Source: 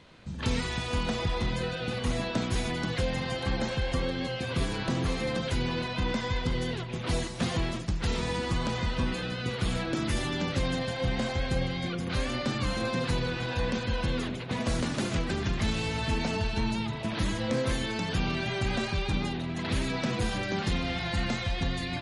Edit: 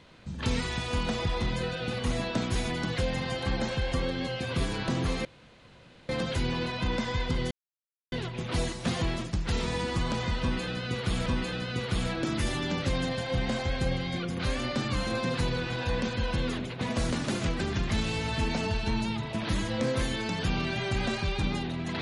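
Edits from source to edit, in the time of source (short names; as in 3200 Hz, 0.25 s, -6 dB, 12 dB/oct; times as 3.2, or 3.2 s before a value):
5.25 insert room tone 0.84 s
6.67 insert silence 0.61 s
8.96–9.81 loop, 2 plays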